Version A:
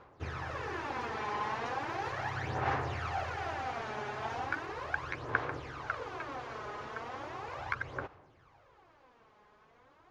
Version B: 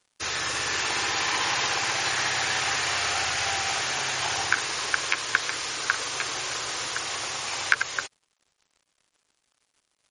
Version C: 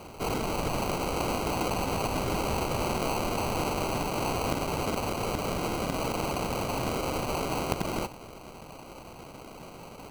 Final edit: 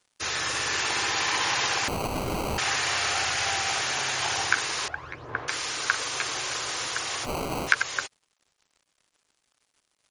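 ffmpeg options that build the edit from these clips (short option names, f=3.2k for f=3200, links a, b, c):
-filter_complex "[2:a]asplit=2[a][b];[1:a]asplit=4[c][d][e][f];[c]atrim=end=1.882[g];[a]atrim=start=1.878:end=2.582[h];[d]atrim=start=2.578:end=4.882[i];[0:a]atrim=start=4.878:end=5.482[j];[e]atrim=start=5.478:end=7.27[k];[b]atrim=start=7.23:end=7.7[l];[f]atrim=start=7.66[m];[g][h]acrossfade=d=0.004:c1=hsin:c2=hsin[n];[n][i]acrossfade=d=0.004:c1=hsin:c2=hsin[o];[o][j]acrossfade=d=0.004:c1=hsin:c2=hsin[p];[p][k]acrossfade=d=0.004:c1=hsin:c2=hsin[q];[q][l]acrossfade=d=0.04:c1=tri:c2=tri[r];[r][m]acrossfade=d=0.04:c1=tri:c2=tri"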